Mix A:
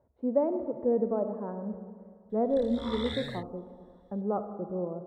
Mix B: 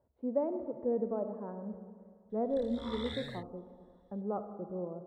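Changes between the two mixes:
speech -5.5 dB; background -5.0 dB

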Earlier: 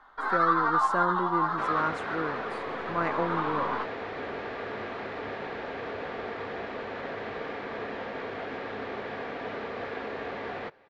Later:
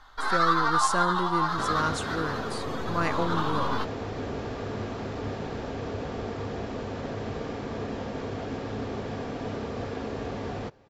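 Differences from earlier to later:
second sound: add graphic EQ 125/250/2000/4000 Hz +4/+6/-8/-11 dB; master: remove three-band isolator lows -15 dB, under 170 Hz, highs -19 dB, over 2300 Hz

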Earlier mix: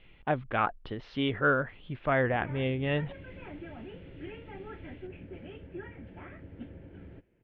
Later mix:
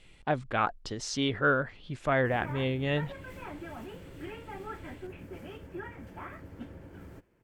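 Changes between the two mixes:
background: add bell 1100 Hz +11.5 dB 0.89 oct; master: remove steep low-pass 3300 Hz 36 dB/oct

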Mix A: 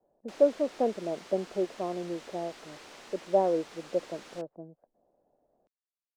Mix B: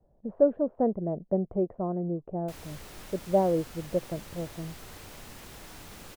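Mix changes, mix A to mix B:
background: entry +2.20 s; master: remove three-band isolator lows -23 dB, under 250 Hz, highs -22 dB, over 7800 Hz

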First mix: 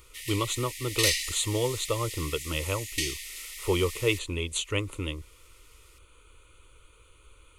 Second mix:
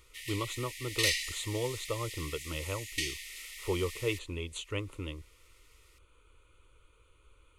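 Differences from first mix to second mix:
speech -6.0 dB; master: add high shelf 4100 Hz -8 dB

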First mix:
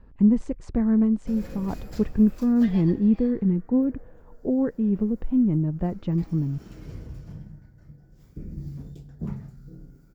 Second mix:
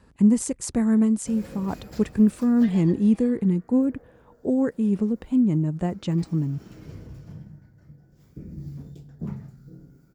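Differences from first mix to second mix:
speech: remove tape spacing loss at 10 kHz 34 dB; master: add HPF 76 Hz 12 dB/oct

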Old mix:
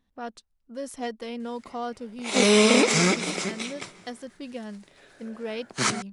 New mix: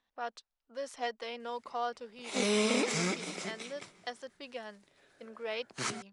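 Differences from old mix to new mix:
speech: add three-band isolator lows -19 dB, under 480 Hz, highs -17 dB, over 6800 Hz; background -11.0 dB

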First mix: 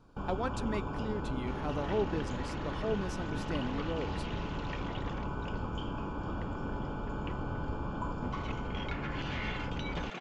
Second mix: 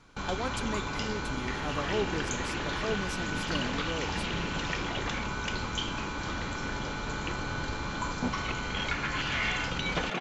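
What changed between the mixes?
speech: add high shelf 5000 Hz +11 dB; first sound: remove running mean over 22 samples; second sound +9.5 dB

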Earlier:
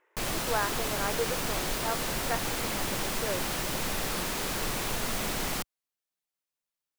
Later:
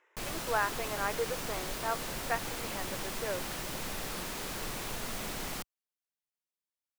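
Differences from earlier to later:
speech: add tilt +2 dB/oct; background -6.5 dB

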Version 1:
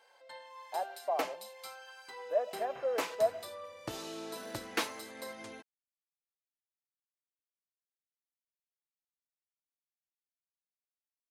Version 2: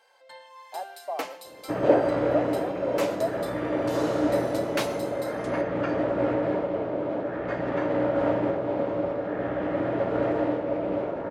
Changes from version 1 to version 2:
first sound: send on; second sound: unmuted

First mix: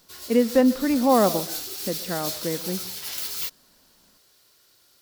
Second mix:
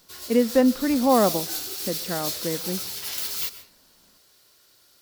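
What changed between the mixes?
speech: send -7.0 dB; background: send on

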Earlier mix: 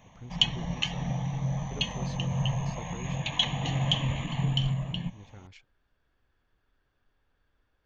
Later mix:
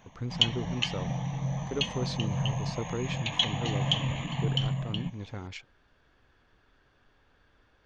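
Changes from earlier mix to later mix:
speech +11.5 dB; master: add low shelf 66 Hz -8 dB

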